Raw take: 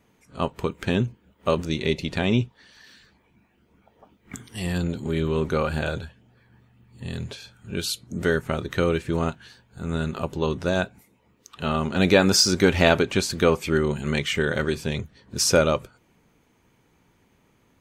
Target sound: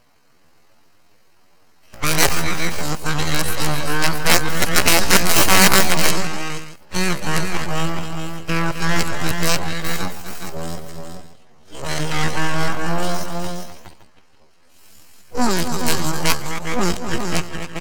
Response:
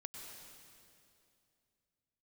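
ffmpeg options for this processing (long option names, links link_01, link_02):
-filter_complex "[0:a]areverse,aeval=exprs='abs(val(0))':channel_layout=same,asplit=2[link_01][link_02];[link_02]aecho=0:1:156|256|415|471|573:0.133|0.355|0.447|0.112|0.133[link_03];[link_01][link_03]amix=inputs=2:normalize=0,aeval=exprs='(mod(2.99*val(0)+1,2)-1)/2.99':channel_layout=same,asplit=2[link_04][link_05];[link_05]acontrast=88,volume=1.5dB[link_06];[link_04][link_06]amix=inputs=2:normalize=0,lowpass=8600,asetrate=88200,aresample=44100,atempo=0.5,bandreject=frequency=3500:width=9.3,volume=-4.5dB"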